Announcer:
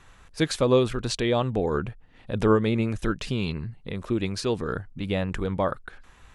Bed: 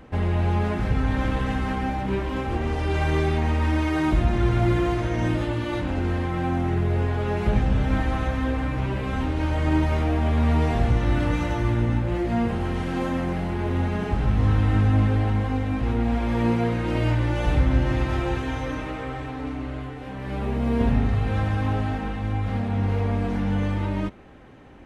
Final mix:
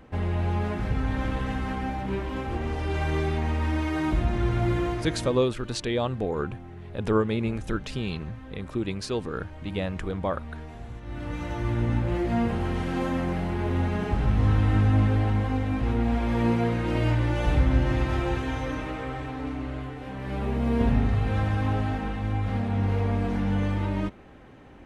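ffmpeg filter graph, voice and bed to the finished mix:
ffmpeg -i stem1.wav -i stem2.wav -filter_complex "[0:a]adelay=4650,volume=-3dB[link_01];[1:a]volume=13.5dB,afade=type=out:start_time=4.84:duration=0.64:silence=0.177828,afade=type=in:start_time=11.02:duration=1:silence=0.133352[link_02];[link_01][link_02]amix=inputs=2:normalize=0" out.wav

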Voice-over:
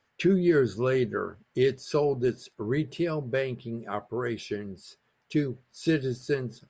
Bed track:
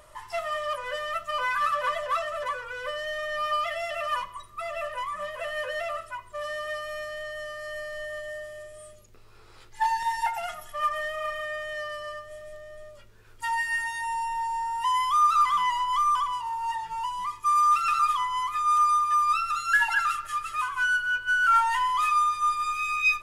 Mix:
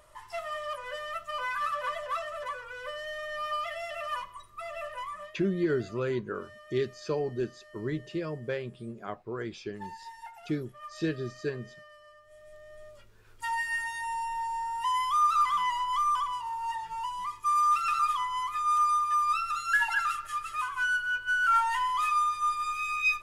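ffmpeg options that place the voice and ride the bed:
ffmpeg -i stem1.wav -i stem2.wav -filter_complex "[0:a]adelay=5150,volume=-5.5dB[link_01];[1:a]volume=9dB,afade=type=out:start_time=5.11:duration=0.25:silence=0.237137,afade=type=in:start_time=12.18:duration=0.71:silence=0.188365[link_02];[link_01][link_02]amix=inputs=2:normalize=0" out.wav

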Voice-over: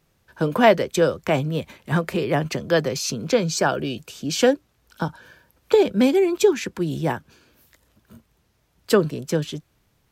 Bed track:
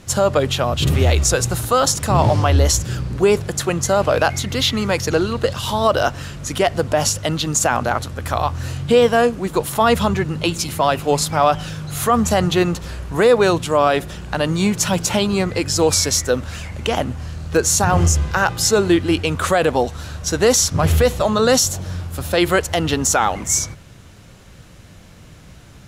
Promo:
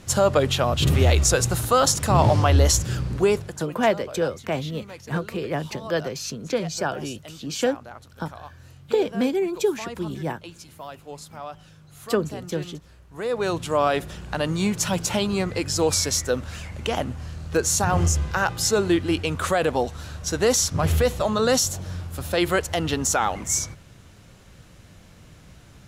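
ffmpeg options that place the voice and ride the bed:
ffmpeg -i stem1.wav -i stem2.wav -filter_complex "[0:a]adelay=3200,volume=-5.5dB[link_01];[1:a]volume=13.5dB,afade=type=out:start_time=3.12:duration=0.55:silence=0.112202,afade=type=in:start_time=13.11:duration=0.65:silence=0.158489[link_02];[link_01][link_02]amix=inputs=2:normalize=0" out.wav

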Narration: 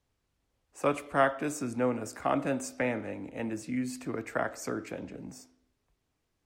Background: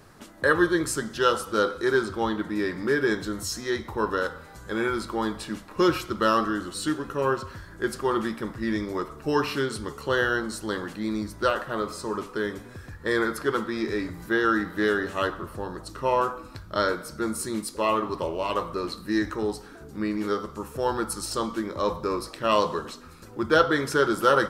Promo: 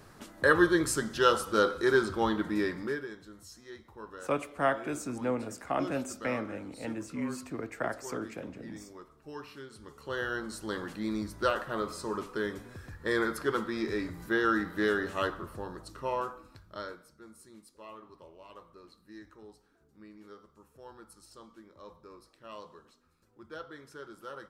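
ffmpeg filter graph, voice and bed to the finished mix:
ffmpeg -i stem1.wav -i stem2.wav -filter_complex "[0:a]adelay=3450,volume=-2.5dB[link_01];[1:a]volume=13dB,afade=type=out:start_time=2.57:duration=0.51:silence=0.133352,afade=type=in:start_time=9.71:duration=1.24:silence=0.177828,afade=type=out:start_time=15.2:duration=1.97:silence=0.105925[link_02];[link_01][link_02]amix=inputs=2:normalize=0" out.wav

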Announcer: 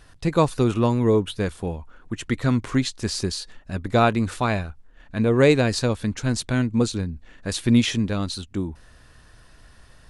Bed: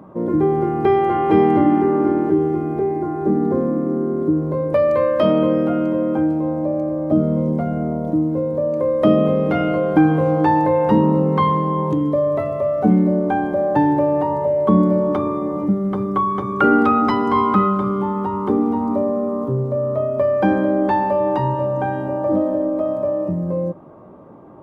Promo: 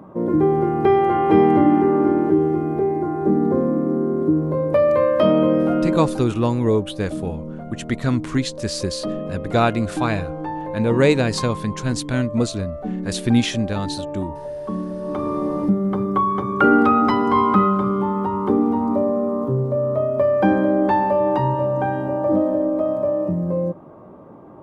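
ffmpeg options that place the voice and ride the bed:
ffmpeg -i stem1.wav -i stem2.wav -filter_complex "[0:a]adelay=5600,volume=0.5dB[link_01];[1:a]volume=12.5dB,afade=type=out:start_time=5.9:duration=0.34:silence=0.237137,afade=type=in:start_time=14.99:duration=0.42:silence=0.237137[link_02];[link_01][link_02]amix=inputs=2:normalize=0" out.wav

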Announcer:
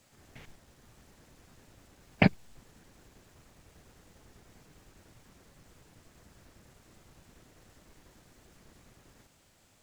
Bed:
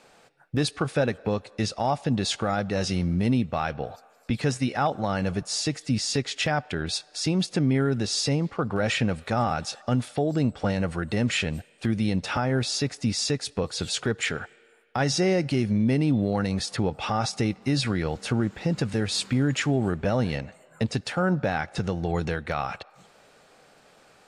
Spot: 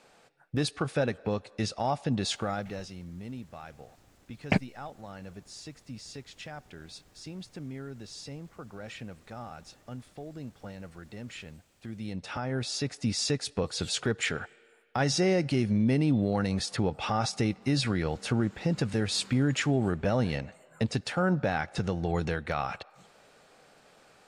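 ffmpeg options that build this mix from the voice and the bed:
ffmpeg -i stem1.wav -i stem2.wav -filter_complex "[0:a]adelay=2300,volume=-3dB[link_01];[1:a]volume=11dB,afade=type=out:start_time=2.36:duration=0.54:silence=0.211349,afade=type=in:start_time=11.8:duration=1.5:silence=0.177828[link_02];[link_01][link_02]amix=inputs=2:normalize=0" out.wav

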